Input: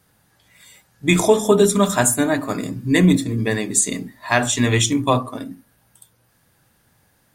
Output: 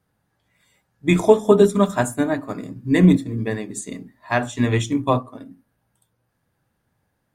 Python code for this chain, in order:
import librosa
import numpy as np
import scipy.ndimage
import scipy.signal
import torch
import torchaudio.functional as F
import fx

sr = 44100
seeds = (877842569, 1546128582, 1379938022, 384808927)

y = fx.high_shelf(x, sr, hz=2400.0, db=-10.5)
y = fx.upward_expand(y, sr, threshold_db=-31.0, expansion=1.5)
y = y * 10.0 ** (2.5 / 20.0)